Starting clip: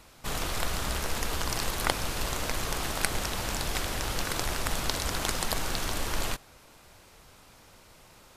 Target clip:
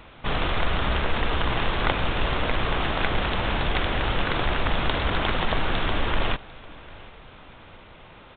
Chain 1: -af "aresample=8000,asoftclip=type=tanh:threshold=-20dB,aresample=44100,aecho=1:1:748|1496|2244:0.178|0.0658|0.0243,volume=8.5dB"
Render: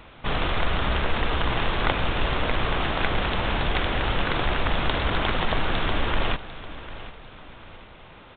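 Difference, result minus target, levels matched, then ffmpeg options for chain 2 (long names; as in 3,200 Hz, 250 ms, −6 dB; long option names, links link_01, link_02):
echo-to-direct +7 dB
-af "aresample=8000,asoftclip=type=tanh:threshold=-20dB,aresample=44100,aecho=1:1:748|1496|2244:0.0794|0.0294|0.0109,volume=8.5dB"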